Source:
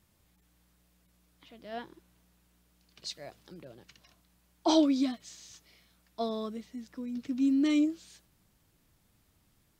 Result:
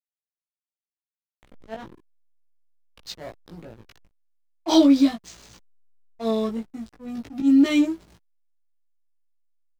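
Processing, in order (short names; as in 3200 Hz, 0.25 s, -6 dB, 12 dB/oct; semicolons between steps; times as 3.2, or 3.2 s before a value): auto swell 0.104 s; backlash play -43 dBFS; doubler 18 ms -2 dB; gain +7.5 dB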